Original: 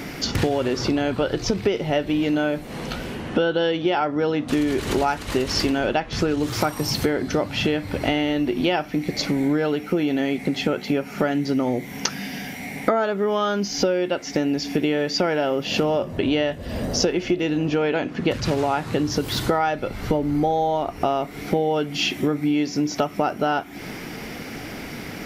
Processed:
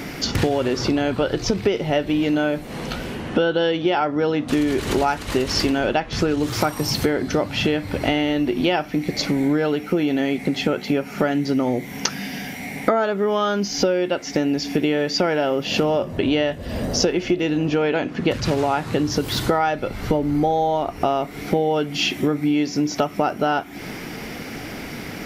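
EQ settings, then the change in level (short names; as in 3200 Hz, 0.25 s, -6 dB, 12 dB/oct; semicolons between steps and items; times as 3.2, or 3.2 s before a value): none; +1.5 dB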